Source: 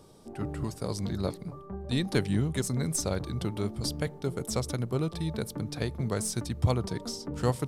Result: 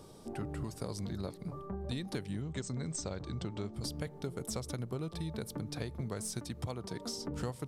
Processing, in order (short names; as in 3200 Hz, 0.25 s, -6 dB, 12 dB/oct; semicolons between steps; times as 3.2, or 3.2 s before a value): 6.39–7.18 low shelf 100 Hz -10 dB; compressor 6:1, threshold -37 dBFS, peak gain reduction 15.5 dB; 2.42–3.74 brick-wall FIR low-pass 8600 Hz; gain +1.5 dB